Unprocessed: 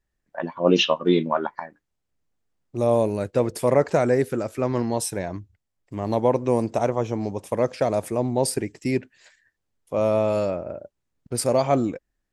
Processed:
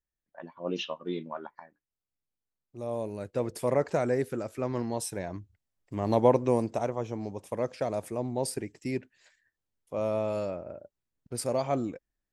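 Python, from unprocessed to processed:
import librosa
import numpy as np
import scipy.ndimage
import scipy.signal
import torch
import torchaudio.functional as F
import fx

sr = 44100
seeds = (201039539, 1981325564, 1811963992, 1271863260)

y = fx.gain(x, sr, db=fx.line((2.82, -15.0), (3.52, -7.5), (5.05, -7.5), (6.27, -1.0), (6.89, -8.5)))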